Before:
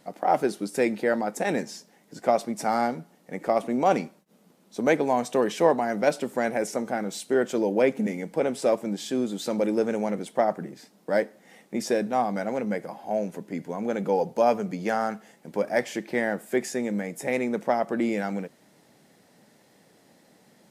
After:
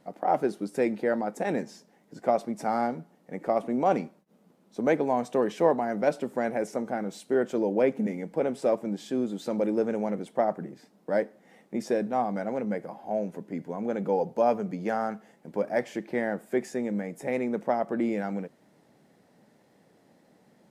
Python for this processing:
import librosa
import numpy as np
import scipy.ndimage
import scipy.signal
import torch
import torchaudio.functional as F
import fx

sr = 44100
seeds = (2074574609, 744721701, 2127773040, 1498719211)

y = fx.high_shelf(x, sr, hz=2100.0, db=-9.5)
y = y * 10.0 ** (-1.5 / 20.0)